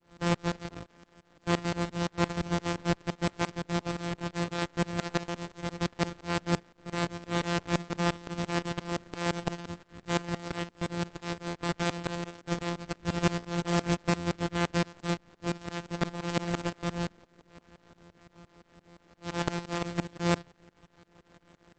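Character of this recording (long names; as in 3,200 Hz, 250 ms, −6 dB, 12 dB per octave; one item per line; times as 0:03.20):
a buzz of ramps at a fixed pitch in blocks of 256 samples
tremolo saw up 5.8 Hz, depth 100%
Opus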